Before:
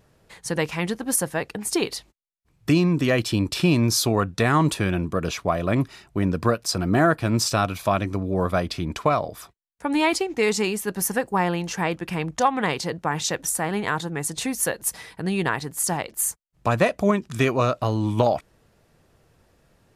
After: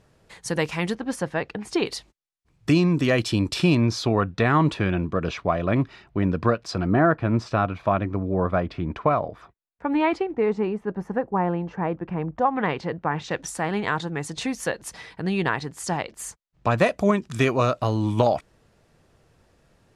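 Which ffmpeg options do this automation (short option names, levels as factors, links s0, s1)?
-af "asetnsamples=n=441:p=0,asendcmd='0.95 lowpass f 3800;1.86 lowpass f 8700;3.75 lowpass f 3400;6.87 lowpass f 1900;10.31 lowpass f 1100;12.56 lowpass f 2200;13.31 lowpass f 5200;16.78 lowpass f 10000',lowpass=10000"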